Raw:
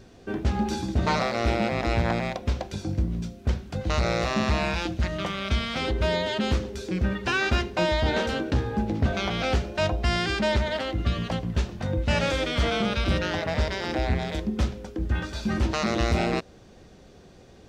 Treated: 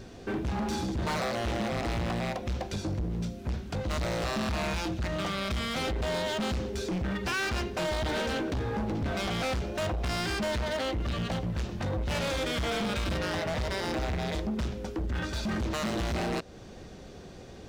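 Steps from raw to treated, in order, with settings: in parallel at +2.5 dB: compression, threshold -34 dBFS, peak gain reduction 16 dB; on the sum: overload inside the chain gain 25 dB; trim -3 dB

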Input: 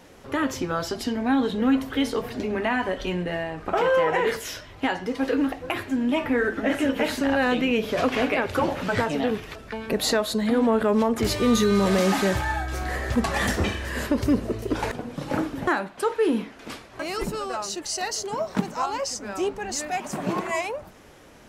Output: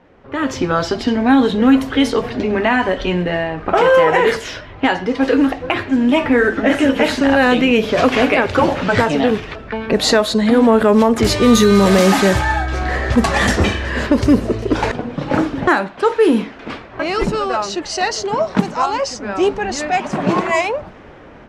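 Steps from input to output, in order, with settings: level-controlled noise filter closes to 2 kHz, open at -17 dBFS; level rider gain up to 11.5 dB

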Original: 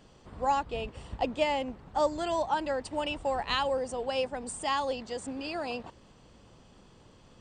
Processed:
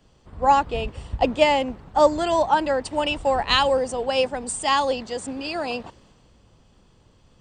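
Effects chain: three bands expanded up and down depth 40%; trim +9 dB

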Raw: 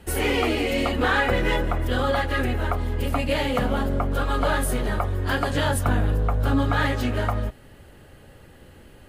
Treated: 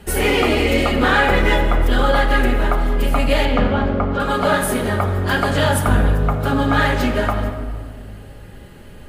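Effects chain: 3.45–4.20 s: distance through air 170 m; simulated room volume 2700 m³, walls mixed, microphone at 1.3 m; trim +5 dB

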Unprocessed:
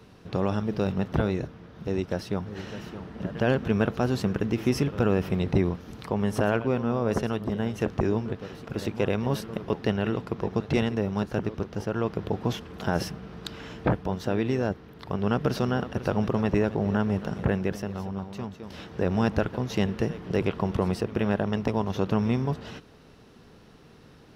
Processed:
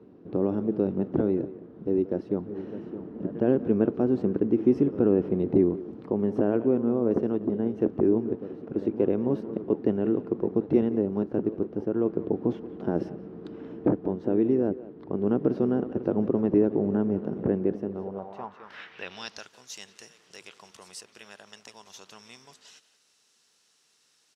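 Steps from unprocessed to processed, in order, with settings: speakerphone echo 180 ms, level -14 dB; band-pass sweep 320 Hz -> 7.6 kHz, 17.93–19.53 s; trim +7.5 dB

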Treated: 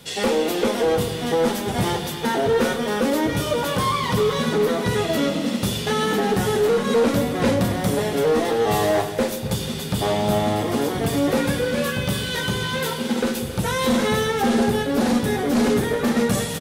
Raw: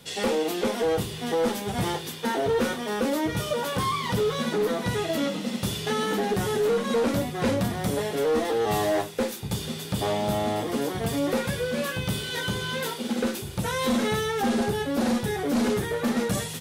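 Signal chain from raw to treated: speakerphone echo 270 ms, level -10 dB; on a send at -12.5 dB: reverberation RT60 1.2 s, pre-delay 76 ms; on the sum: trim +4.5 dB

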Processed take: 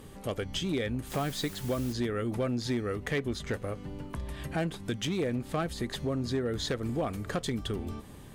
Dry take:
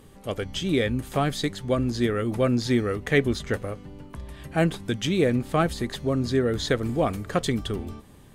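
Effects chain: compression 2.5:1, threshold -35 dBFS, peak gain reduction 13.5 dB; 1.09–1.92 s: added noise white -50 dBFS; one-sided clip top -28.5 dBFS, bottom -24.5 dBFS; trim +2.5 dB

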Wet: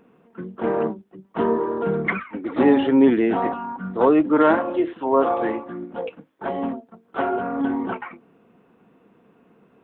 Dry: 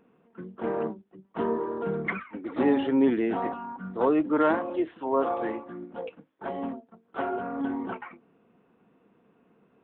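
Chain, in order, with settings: 4.29–4.93 s: de-hum 86.69 Hz, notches 38; trim +7 dB

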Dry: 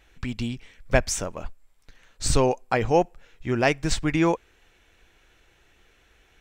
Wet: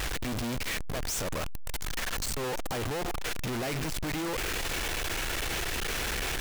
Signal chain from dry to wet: one-bit comparator; trim -5 dB

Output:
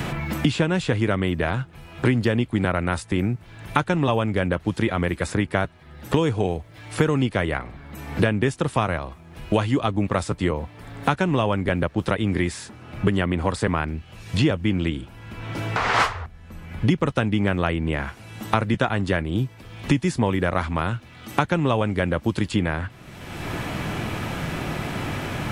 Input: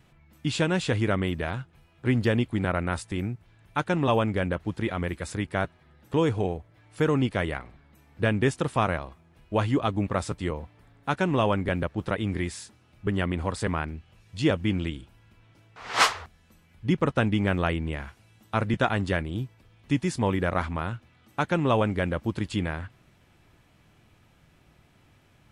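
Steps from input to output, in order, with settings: three bands compressed up and down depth 100%; trim +3.5 dB

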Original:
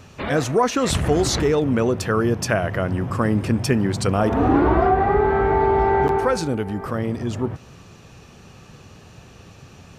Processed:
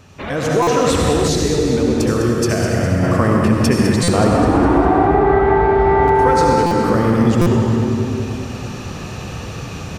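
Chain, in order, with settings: reverberation RT60 2.4 s, pre-delay 62 ms, DRR -1 dB; compression 2.5:1, threshold -20 dBFS, peak gain reduction 8.5 dB; feedback delay 204 ms, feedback 45%, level -9 dB; level rider gain up to 13 dB; 1.28–3.03 s: peaking EQ 1.1 kHz -7.5 dB 1.9 oct; buffer glitch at 0.62/4.03/6.66/7.41 s, samples 256, times 8; trim -1 dB

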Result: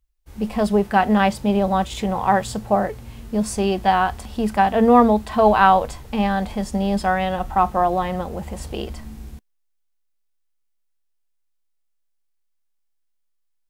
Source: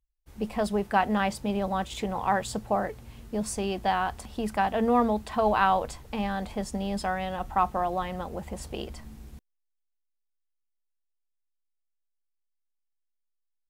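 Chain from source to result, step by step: harmonic-percussive split harmonic +7 dB; trim +3 dB

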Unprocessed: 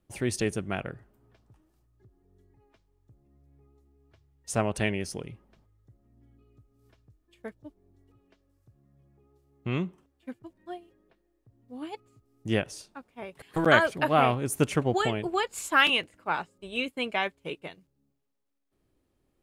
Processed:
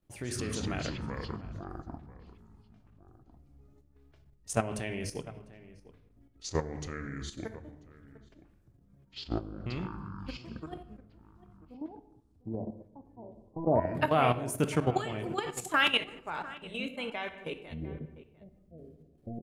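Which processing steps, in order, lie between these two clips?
11.74–13.95 s: rippled Chebyshev low-pass 1 kHz, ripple 3 dB; reverberation RT60 0.75 s, pre-delay 7 ms, DRR 7.5 dB; level held to a coarse grid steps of 12 dB; echo from a far wall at 120 m, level -17 dB; ever faster or slower copies 88 ms, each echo -6 st, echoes 2

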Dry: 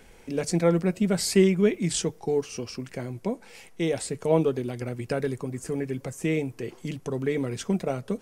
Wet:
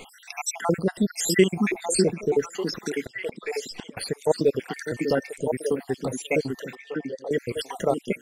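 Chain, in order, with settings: random holes in the spectrogram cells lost 71%; bass shelf 370 Hz -10 dB; in parallel at +1 dB: compression, threshold -48 dBFS, peak gain reduction 25 dB; 3.00–3.97 s: on the sum: inverted gate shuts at -30 dBFS, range -31 dB; 4.73–5.30 s: whistle 1.8 kHz -52 dBFS; 6.75–7.31 s: vowel filter e; on a send: repeats whose band climbs or falls 598 ms, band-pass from 250 Hz, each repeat 1.4 oct, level 0 dB; on the sum: trim +8 dB

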